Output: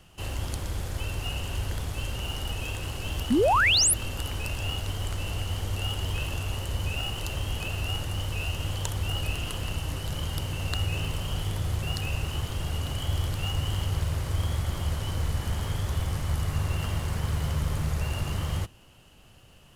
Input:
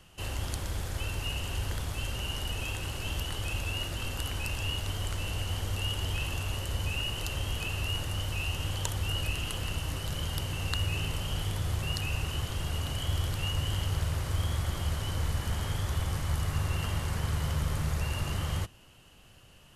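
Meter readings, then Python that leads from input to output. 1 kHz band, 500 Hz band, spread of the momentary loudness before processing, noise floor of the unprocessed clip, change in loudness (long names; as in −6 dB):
+6.5 dB, +7.0 dB, 3 LU, −56 dBFS, +3.5 dB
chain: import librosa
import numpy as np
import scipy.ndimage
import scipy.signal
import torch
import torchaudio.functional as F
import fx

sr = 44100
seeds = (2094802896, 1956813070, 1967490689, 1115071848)

p1 = fx.sample_hold(x, sr, seeds[0], rate_hz=2100.0, jitter_pct=0)
p2 = x + (p1 * 10.0 ** (-9.5 / 20.0))
y = fx.spec_paint(p2, sr, seeds[1], shape='rise', start_s=3.3, length_s=0.64, low_hz=210.0, high_hz=12000.0, level_db=-21.0)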